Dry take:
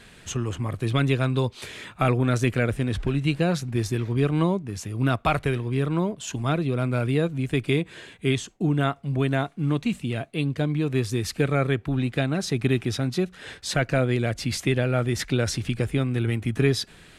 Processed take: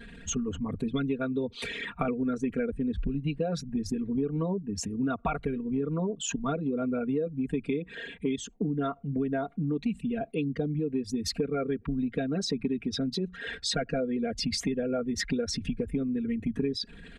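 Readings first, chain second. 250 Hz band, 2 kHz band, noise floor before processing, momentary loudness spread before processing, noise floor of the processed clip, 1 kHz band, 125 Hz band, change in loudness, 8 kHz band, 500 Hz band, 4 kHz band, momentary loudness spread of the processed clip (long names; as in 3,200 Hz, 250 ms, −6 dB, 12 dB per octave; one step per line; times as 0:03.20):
−3.0 dB, −9.0 dB, −50 dBFS, 6 LU, −51 dBFS, −7.5 dB, −12.5 dB, −6.0 dB, −2.5 dB, −5.0 dB, −3.5 dB, 3 LU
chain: spectral envelope exaggerated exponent 2
comb filter 4.3 ms, depth 99%
downward compressor 5 to 1, threshold −27 dBFS, peak gain reduction 12.5 dB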